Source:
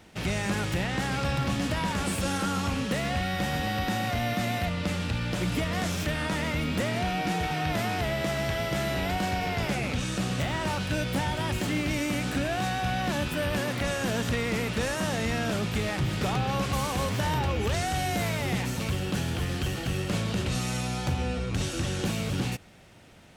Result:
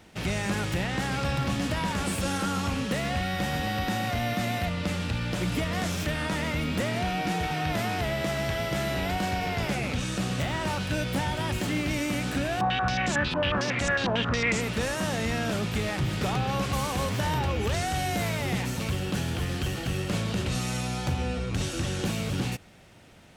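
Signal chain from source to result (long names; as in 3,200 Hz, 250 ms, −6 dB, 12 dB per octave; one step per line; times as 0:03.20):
0:12.61–0:14.61: low-pass on a step sequencer 11 Hz 960–7,400 Hz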